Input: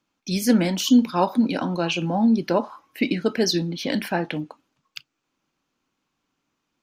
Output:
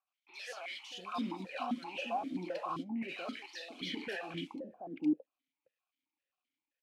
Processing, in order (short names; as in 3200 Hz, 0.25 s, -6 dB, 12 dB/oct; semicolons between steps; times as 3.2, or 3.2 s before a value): CVSD 64 kbps; gate -35 dBFS, range -21 dB; tilt shelf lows -9 dB, about 670 Hz; limiter -28.5 dBFS, peak gain reduction 22 dB; soft clip -34.5 dBFS, distortion -14 dB; three bands offset in time mids, highs, lows 70/690 ms, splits 600/2300 Hz; vowel sequencer 7.6 Hz; gain +14 dB